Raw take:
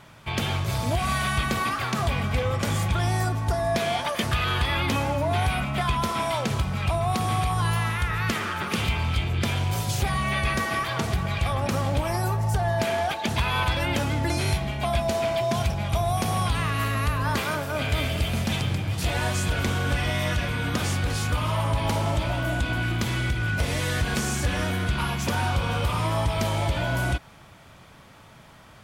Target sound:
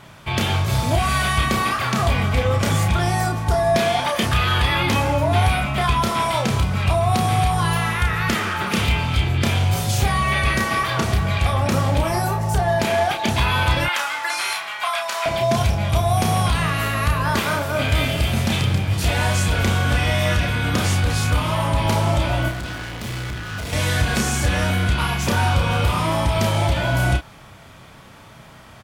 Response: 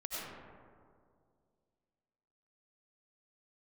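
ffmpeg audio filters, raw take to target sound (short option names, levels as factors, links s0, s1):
-filter_complex "[0:a]asettb=1/sr,asplit=3[s0][s1][s2];[s0]atrim=end=13.854[s3];[s1]atrim=start=13.85:end=15.26,asetpts=PTS-STARTPTS,afade=t=in:d=0.004:c=qsin,afade=t=out:st=1.406:d=0.004:c=qsin,highpass=f=1200:t=q:w=2[s4];[s2]atrim=start=15.256[s5];[s3][s4]acrossfade=d=0.004:c1=hsin:c2=qsin[s6];[s6][s5]acrossfade=d=0.004:c1=qsin:c2=hsin,asettb=1/sr,asplit=3[s7][s8][s9];[s7]atrim=end=22.484[s10];[s8]atrim=start=22.48:end=23.73,asetpts=PTS-STARTPTS,afade=t=in:d=0.004:c=qsin,afade=t=out:st=1.246:d=0.004:c=qsin,volume=44.7,asoftclip=hard,volume=0.0224[s11];[s9]atrim=start=23.726[s12];[s10][s11]acrossfade=d=0.004:c1=hsin:c2=qsin[s13];[s13][s12]acrossfade=d=0.004:c1=qsin:c2=hsin,asplit=2[s14][s15];[s15]adelay=31,volume=0.562[s16];[s14][s16]amix=inputs=2:normalize=0,volume=1.68"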